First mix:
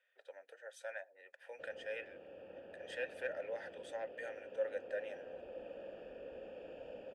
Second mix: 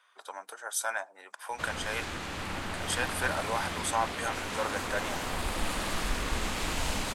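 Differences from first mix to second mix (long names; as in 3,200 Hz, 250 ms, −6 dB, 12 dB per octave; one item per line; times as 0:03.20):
background: remove moving average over 22 samples
master: remove formant filter e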